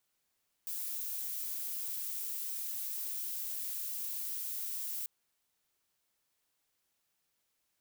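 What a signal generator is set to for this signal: noise violet, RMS -38.5 dBFS 4.39 s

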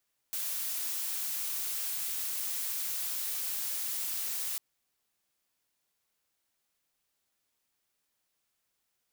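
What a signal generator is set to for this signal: noise blue, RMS -34.5 dBFS 4.25 s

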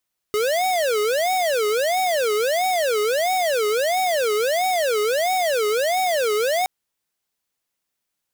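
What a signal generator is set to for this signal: siren wail 417–752 Hz 1.5 per s square -20.5 dBFS 6.32 s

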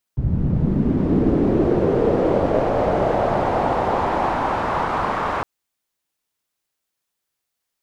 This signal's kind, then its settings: swept filtered noise white, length 5.26 s lowpass, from 100 Hz, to 1.1 kHz, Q 2.2, linear, gain ramp -14 dB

